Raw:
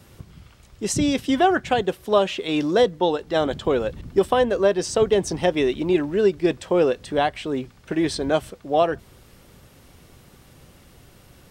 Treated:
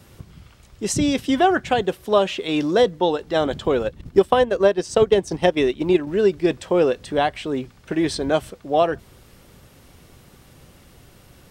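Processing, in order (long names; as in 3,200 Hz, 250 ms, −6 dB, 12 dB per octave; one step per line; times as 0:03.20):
0:03.83–0:06.07: transient designer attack +3 dB, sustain −8 dB
level +1 dB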